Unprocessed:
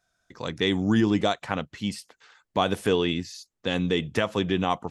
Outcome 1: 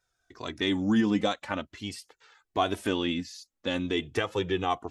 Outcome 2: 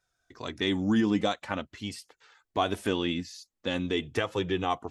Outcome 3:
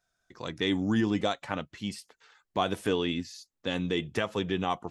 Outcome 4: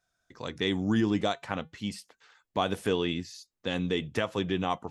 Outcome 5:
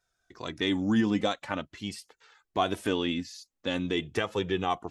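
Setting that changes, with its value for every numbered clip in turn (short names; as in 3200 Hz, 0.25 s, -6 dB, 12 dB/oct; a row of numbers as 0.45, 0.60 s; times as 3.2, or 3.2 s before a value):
flange, regen: +2, -28, +73, -88, +28%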